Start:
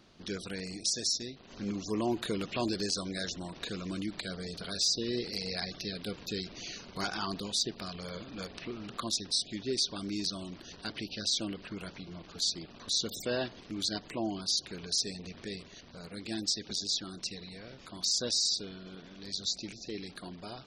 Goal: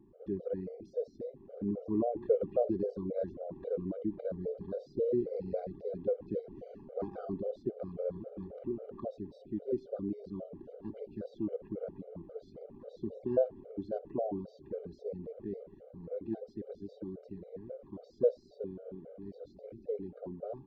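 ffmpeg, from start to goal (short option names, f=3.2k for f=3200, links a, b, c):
-af "lowpass=f=520:t=q:w=5.9,afftfilt=real='re*gt(sin(2*PI*3.7*pts/sr)*(1-2*mod(floor(b*sr/1024/400),2)),0)':imag='im*gt(sin(2*PI*3.7*pts/sr)*(1-2*mod(floor(b*sr/1024/400),2)),0)':win_size=1024:overlap=0.75"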